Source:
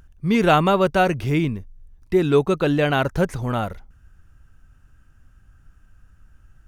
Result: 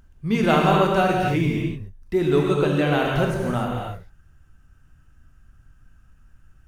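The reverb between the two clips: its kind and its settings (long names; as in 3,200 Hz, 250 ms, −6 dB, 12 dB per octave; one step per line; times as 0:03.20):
reverb whose tail is shaped and stops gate 320 ms flat, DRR −1.5 dB
level −4.5 dB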